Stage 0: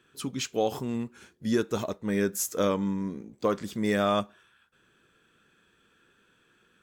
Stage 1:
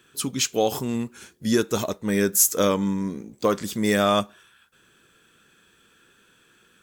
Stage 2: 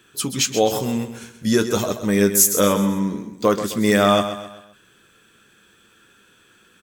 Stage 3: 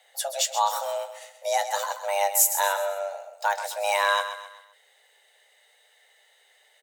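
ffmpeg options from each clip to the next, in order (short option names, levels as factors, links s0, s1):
-af "highshelf=f=4700:g=10.5,volume=1.68"
-filter_complex "[0:a]flanger=delay=9.2:depth=1:regen=-54:speed=0.35:shape=triangular,asplit=2[s0][s1];[s1]aecho=0:1:130|260|390|520:0.299|0.125|0.0527|0.0221[s2];[s0][s2]amix=inputs=2:normalize=0,volume=2.37"
-af "afreqshift=400,asubboost=boost=10:cutoff=200,volume=0.562"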